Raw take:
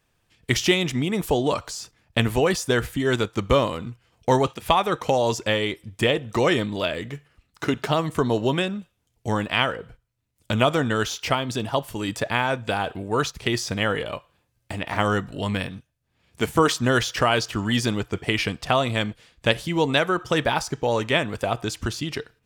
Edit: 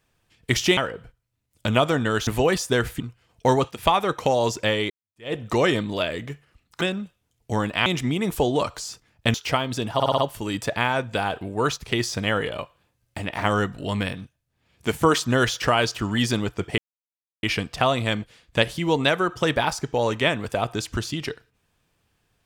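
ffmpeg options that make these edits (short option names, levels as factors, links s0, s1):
-filter_complex "[0:a]asplit=13[s0][s1][s2][s3][s4][s5][s6][s7][s8][s9][s10][s11][s12];[s0]atrim=end=0.772[s13];[s1]atrim=start=9.618:end=11.122[s14];[s2]atrim=start=2.248:end=2.982[s15];[s3]atrim=start=3.828:end=5.73,asetpts=PTS-STARTPTS,afade=t=out:st=1.898:d=0.004:c=hsin[s16];[s4]atrim=start=5.73:end=7.642,asetpts=PTS-STARTPTS,afade=t=in:d=0.43:c=exp[s17];[s5]atrim=start=8.568:end=9.622[s18];[s6]atrim=start=0.768:end=2.252[s19];[s7]atrim=start=11.118:end=11.782[s20];[s8]atrim=start=11.718:end=11.782[s21];[s9]atrim=start=11.718:end=11.782[s22];[s10]atrim=start=11.718:end=11.782[s23];[s11]atrim=start=11.718:end=18.32,asetpts=PTS-STARTPTS,afade=t=out:st=6.598:d=0.004:c=hsin,apad=pad_dur=0.65[s24];[s12]atrim=start=18.32,asetpts=PTS-STARTPTS,afade=t=in:d=0.004:c=hsin[s25];[s13][s14]acrossfade=d=0.004:c1=hsin:c2=hsin[s26];[s26][s15]acrossfade=d=0.004:c1=hsin:c2=hsin[s27];[s16][s17]concat=n=2:v=0:a=1[s28];[s27][s28]acrossfade=d=0.004:c1=hsin:c2=hsin[s29];[s29][s18]acrossfade=d=0.004:c1=hsin:c2=hsin[s30];[s30][s19]acrossfade=d=0.004:c1=hsin:c2=hsin[s31];[s31][s20]acrossfade=d=0.004:c1=hsin:c2=hsin[s32];[s32][s21]acrossfade=d=0.004:c1=hsin:c2=hsin[s33];[s33][s22]acrossfade=d=0.004:c1=hsin:c2=hsin[s34];[s34][s23]acrossfade=d=0.004:c1=hsin:c2=hsin[s35];[s24][s25]concat=n=2:v=0:a=1[s36];[s35][s36]acrossfade=d=0.004:c1=hsin:c2=hsin"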